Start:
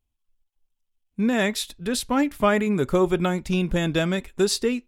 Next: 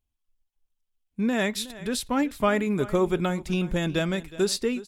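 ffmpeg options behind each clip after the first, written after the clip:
ffmpeg -i in.wav -af "aecho=1:1:367:0.133,volume=-3dB" out.wav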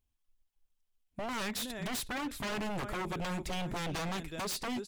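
ffmpeg -i in.wav -af "acompressor=threshold=-26dB:ratio=6,aeval=exprs='0.0282*(abs(mod(val(0)/0.0282+3,4)-2)-1)':channel_layout=same" out.wav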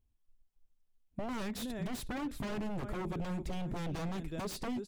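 ffmpeg -i in.wav -af "tiltshelf=frequency=680:gain=6,acompressor=threshold=-34dB:ratio=6" out.wav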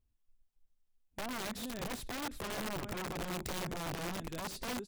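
ffmpeg -i in.wav -af "aeval=exprs='(mod(39.8*val(0)+1,2)-1)/39.8':channel_layout=same,volume=-2dB" out.wav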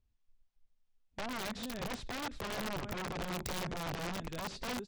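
ffmpeg -i in.wav -filter_complex "[0:a]equalizer=frequency=320:width=3:gain=-3.5,acrossover=split=790|7000[link_01][link_02][link_03];[link_03]acrusher=bits=5:mix=0:aa=0.000001[link_04];[link_01][link_02][link_04]amix=inputs=3:normalize=0,volume=1dB" out.wav

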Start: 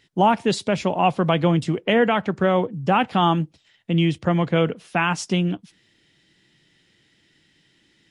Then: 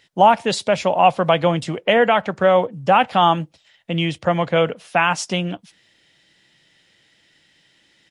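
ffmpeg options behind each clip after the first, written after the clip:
ffmpeg -i in.wav -af "firequalizer=gain_entry='entry(380,0);entry(550,10);entry(1100,7)':delay=0.05:min_phase=1,volume=-3dB" out.wav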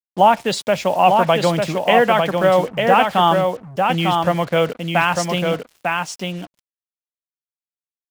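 ffmpeg -i in.wav -af "acrusher=bits=5:mix=0:aa=0.5,aecho=1:1:899:0.631" out.wav

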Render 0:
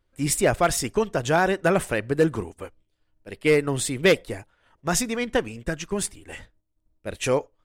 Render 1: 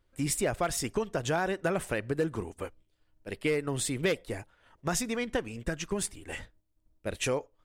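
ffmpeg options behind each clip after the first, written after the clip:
ffmpeg -i in.wav -af "acompressor=threshold=-30dB:ratio=2.5" out.wav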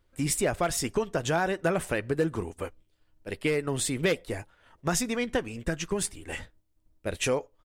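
ffmpeg -i in.wav -filter_complex "[0:a]asplit=2[link_01][link_02];[link_02]adelay=12,volume=-14dB[link_03];[link_01][link_03]amix=inputs=2:normalize=0,volume=2.5dB" out.wav

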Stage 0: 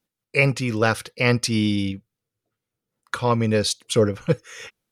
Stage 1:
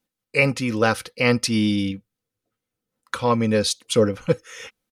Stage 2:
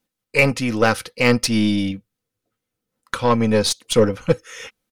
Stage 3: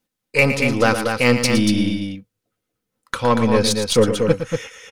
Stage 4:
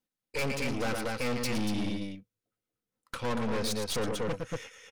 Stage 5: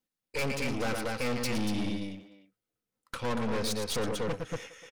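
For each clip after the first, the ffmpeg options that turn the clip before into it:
ffmpeg -i in.wav -af "aecho=1:1:3.9:0.35" out.wav
ffmpeg -i in.wav -af "aeval=exprs='0.668*(cos(1*acos(clip(val(0)/0.668,-1,1)))-cos(1*PI/2))+0.0299*(cos(8*acos(clip(val(0)/0.668,-1,1)))-cos(8*PI/2))':channel_layout=same,volume=2.5dB" out.wav
ffmpeg -i in.wav -af "aecho=1:1:113.7|236.2:0.316|0.501" out.wav
ffmpeg -i in.wav -af "aeval=exprs='(tanh(12.6*val(0)+0.75)-tanh(0.75))/12.6':channel_layout=same,volume=-7dB" out.wav
ffmpeg -i in.wav -filter_complex "[0:a]asplit=2[link_01][link_02];[link_02]adelay=300,highpass=300,lowpass=3400,asoftclip=type=hard:threshold=-34dB,volume=-14dB[link_03];[link_01][link_03]amix=inputs=2:normalize=0" out.wav

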